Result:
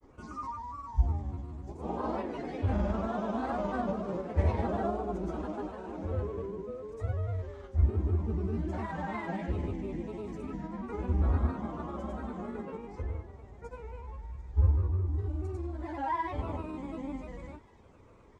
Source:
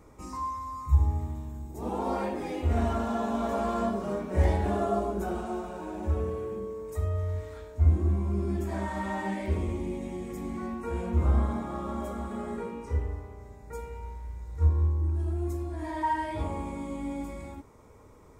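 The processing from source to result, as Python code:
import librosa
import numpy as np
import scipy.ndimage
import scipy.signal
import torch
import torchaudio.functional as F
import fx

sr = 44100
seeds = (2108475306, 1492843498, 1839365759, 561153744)

y = fx.granulator(x, sr, seeds[0], grain_ms=100.0, per_s=20.0, spray_ms=100.0, spread_st=3)
y = fx.air_absorb(y, sr, metres=100.0)
y = fx.echo_wet_highpass(y, sr, ms=742, feedback_pct=63, hz=3000.0, wet_db=-15)
y = F.gain(torch.from_numpy(y), -2.0).numpy()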